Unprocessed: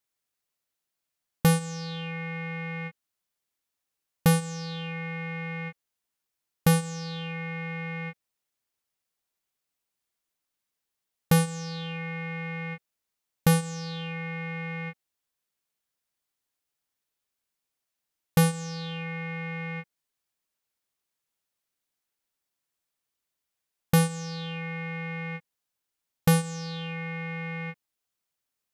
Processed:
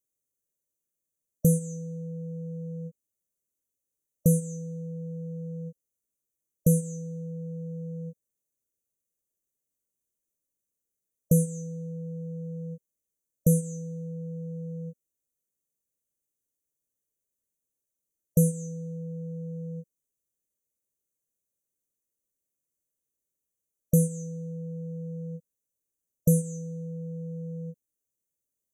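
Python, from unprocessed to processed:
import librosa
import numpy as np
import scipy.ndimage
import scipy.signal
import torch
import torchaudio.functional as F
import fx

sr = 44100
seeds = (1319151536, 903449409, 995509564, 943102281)

y = fx.brickwall_bandstop(x, sr, low_hz=620.0, high_hz=5800.0)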